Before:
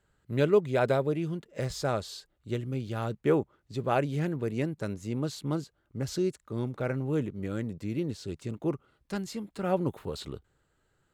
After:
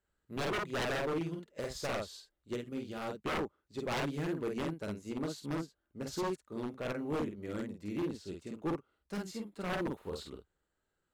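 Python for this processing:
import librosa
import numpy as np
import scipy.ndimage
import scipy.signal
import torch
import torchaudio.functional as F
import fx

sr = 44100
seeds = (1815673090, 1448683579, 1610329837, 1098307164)

y = fx.peak_eq(x, sr, hz=120.0, db=-13.5, octaves=0.5)
y = fx.doubler(y, sr, ms=49.0, db=-3.0)
y = 10.0 ** (-25.5 / 20.0) * (np.abs((y / 10.0 ** (-25.5 / 20.0) + 3.0) % 4.0 - 2.0) - 1.0)
y = fx.upward_expand(y, sr, threshold_db=-47.0, expansion=1.5)
y = y * librosa.db_to_amplitude(-2.5)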